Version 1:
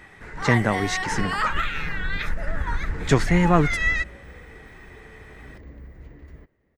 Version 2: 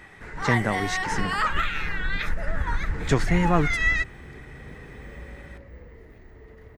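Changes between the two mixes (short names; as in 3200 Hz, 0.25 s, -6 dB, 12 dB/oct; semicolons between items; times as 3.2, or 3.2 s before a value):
speech -3.5 dB; second sound: entry +1.45 s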